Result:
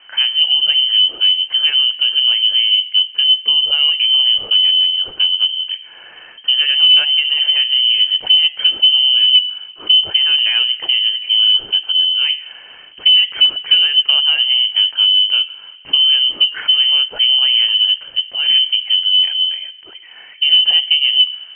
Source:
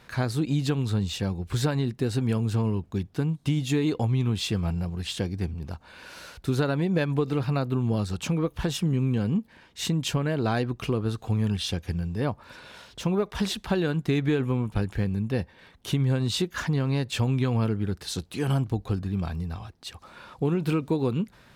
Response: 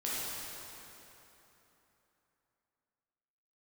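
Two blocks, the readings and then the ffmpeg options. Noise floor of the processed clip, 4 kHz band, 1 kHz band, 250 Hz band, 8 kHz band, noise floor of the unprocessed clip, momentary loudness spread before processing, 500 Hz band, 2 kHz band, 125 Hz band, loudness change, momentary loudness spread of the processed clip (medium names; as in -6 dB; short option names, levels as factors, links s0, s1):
-39 dBFS, +30.5 dB, no reading, under -20 dB, under -40 dB, -56 dBFS, 9 LU, under -10 dB, +14.5 dB, under -30 dB, +16.5 dB, 6 LU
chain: -filter_complex "[0:a]equalizer=f=190:t=o:w=1.1:g=14.5,bandreject=f=73.94:t=h:w=4,bandreject=f=147.88:t=h:w=4,bandreject=f=221.82:t=h:w=4,bandreject=f=295.76:t=h:w=4,bandreject=f=369.7:t=h:w=4,bandreject=f=443.64:t=h:w=4,bandreject=f=517.58:t=h:w=4,bandreject=f=591.52:t=h:w=4,bandreject=f=665.46:t=h:w=4,bandreject=f=739.4:t=h:w=4,bandreject=f=813.34:t=h:w=4,bandreject=f=887.28:t=h:w=4,bandreject=f=961.22:t=h:w=4,bandreject=f=1035.16:t=h:w=4,bandreject=f=1109.1:t=h:w=4,bandreject=f=1183.04:t=h:w=4,bandreject=f=1256.98:t=h:w=4,bandreject=f=1330.92:t=h:w=4,bandreject=f=1404.86:t=h:w=4,bandreject=f=1478.8:t=h:w=4,acontrast=73,asplit=2[s0][s1];[1:a]atrim=start_sample=2205[s2];[s1][s2]afir=irnorm=-1:irlink=0,volume=0.0562[s3];[s0][s3]amix=inputs=2:normalize=0,lowpass=f=2700:t=q:w=0.5098,lowpass=f=2700:t=q:w=0.6013,lowpass=f=2700:t=q:w=0.9,lowpass=f=2700:t=q:w=2.563,afreqshift=-3200,volume=0.794"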